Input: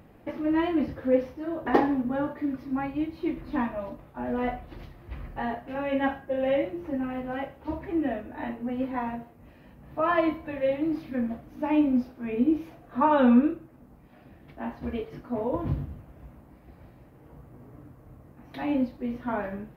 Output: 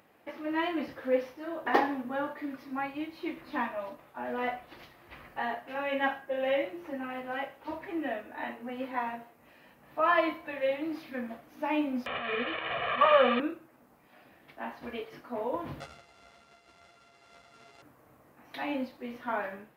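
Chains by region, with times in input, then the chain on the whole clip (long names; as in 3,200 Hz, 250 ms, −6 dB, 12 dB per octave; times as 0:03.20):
0:12.06–0:13.40: linear delta modulator 16 kbit/s, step −26.5 dBFS + comb filter 1.7 ms, depth 89%
0:15.80–0:17.82: samples sorted by size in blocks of 64 samples + high-frequency loss of the air 72 metres + string-ensemble chorus
whole clip: high-pass filter 1,100 Hz 6 dB per octave; automatic gain control gain up to 3.5 dB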